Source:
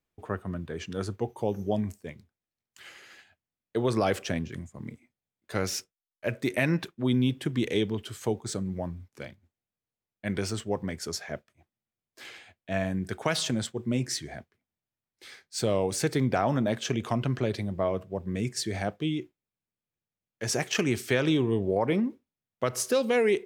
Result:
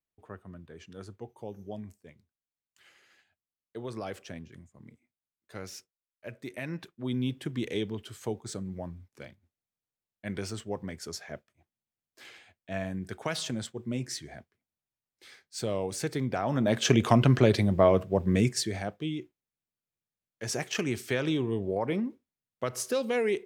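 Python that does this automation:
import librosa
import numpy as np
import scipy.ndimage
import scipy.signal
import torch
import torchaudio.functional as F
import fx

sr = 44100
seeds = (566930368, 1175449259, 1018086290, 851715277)

y = fx.gain(x, sr, db=fx.line((6.6, -12.0), (7.28, -5.0), (16.42, -5.0), (16.89, 7.0), (18.38, 7.0), (18.83, -4.0)))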